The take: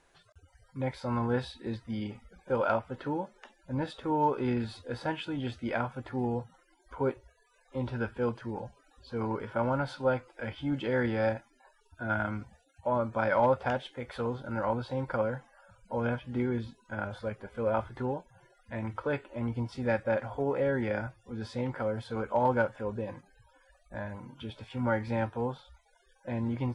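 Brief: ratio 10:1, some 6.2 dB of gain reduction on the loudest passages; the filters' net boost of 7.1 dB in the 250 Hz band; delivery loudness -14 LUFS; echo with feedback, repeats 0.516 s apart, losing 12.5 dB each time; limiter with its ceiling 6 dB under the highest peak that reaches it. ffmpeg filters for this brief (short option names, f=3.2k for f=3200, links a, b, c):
-af "equalizer=f=250:t=o:g=8,acompressor=threshold=-26dB:ratio=10,alimiter=limit=-24dB:level=0:latency=1,aecho=1:1:516|1032|1548:0.237|0.0569|0.0137,volume=20.5dB"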